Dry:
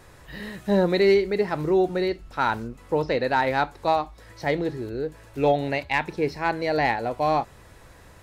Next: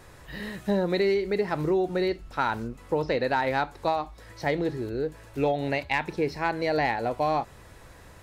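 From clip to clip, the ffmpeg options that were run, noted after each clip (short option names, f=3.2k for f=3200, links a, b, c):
-af "acompressor=threshold=-21dB:ratio=6"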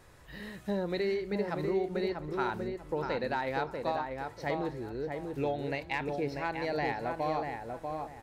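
-filter_complex "[0:a]asplit=2[a][b];[b]adelay=641,lowpass=f=1.7k:p=1,volume=-4dB,asplit=2[c][d];[d]adelay=641,lowpass=f=1.7k:p=1,volume=0.3,asplit=2[e][f];[f]adelay=641,lowpass=f=1.7k:p=1,volume=0.3,asplit=2[g][h];[h]adelay=641,lowpass=f=1.7k:p=1,volume=0.3[i];[a][c][e][g][i]amix=inputs=5:normalize=0,volume=-7.5dB"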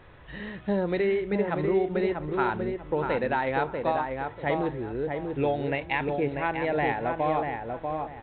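-af "volume=6dB" -ar 8000 -c:a pcm_mulaw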